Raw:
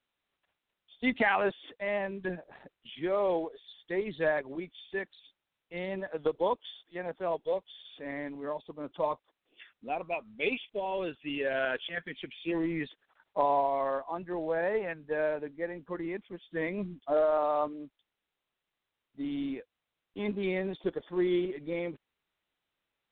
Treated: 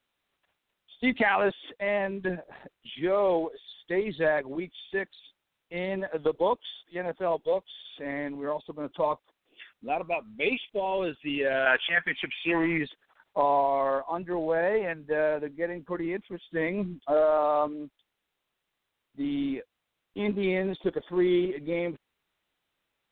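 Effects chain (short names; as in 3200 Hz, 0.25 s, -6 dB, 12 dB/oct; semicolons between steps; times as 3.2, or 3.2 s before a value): 11.66–12.78 band shelf 1400 Hz +10 dB 2.3 oct; in parallel at -3 dB: limiter -22.5 dBFS, peak gain reduction 10 dB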